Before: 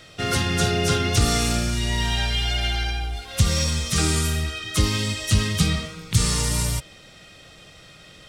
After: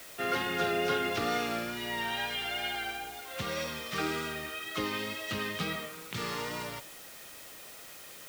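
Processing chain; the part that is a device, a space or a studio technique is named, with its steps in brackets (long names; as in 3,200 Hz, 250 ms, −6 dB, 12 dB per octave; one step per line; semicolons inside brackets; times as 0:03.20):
wax cylinder (band-pass filter 350–2,400 Hz; tape wow and flutter 27 cents; white noise bed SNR 14 dB)
level −3.5 dB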